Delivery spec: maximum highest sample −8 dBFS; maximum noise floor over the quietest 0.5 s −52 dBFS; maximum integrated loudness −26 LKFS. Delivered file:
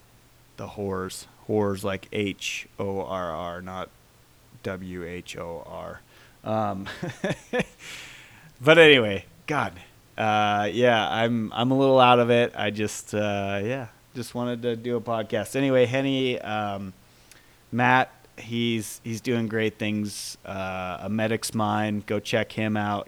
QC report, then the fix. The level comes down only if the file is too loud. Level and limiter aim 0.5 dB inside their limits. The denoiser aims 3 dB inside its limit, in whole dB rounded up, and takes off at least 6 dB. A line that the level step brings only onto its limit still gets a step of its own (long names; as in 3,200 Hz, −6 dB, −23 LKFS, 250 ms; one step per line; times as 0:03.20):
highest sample −2.5 dBFS: out of spec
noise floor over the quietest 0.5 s −56 dBFS: in spec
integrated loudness −24.5 LKFS: out of spec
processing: level −2 dB
brickwall limiter −8.5 dBFS